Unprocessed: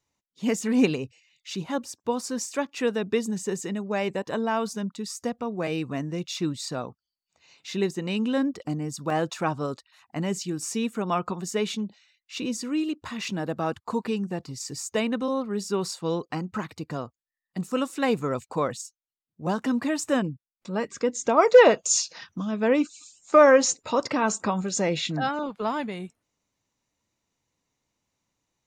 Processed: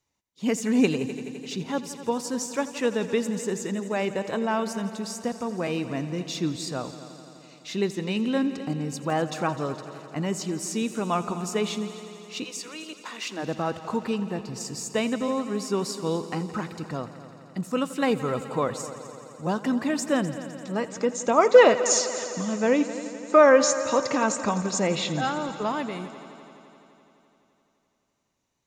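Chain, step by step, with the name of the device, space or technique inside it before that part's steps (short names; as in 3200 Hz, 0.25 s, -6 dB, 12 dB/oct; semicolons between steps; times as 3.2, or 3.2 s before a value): 12.43–13.42 HPF 740 Hz -> 260 Hz 24 dB/oct; multi-head tape echo (multi-head echo 85 ms, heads all three, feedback 69%, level -18.5 dB; wow and flutter 23 cents)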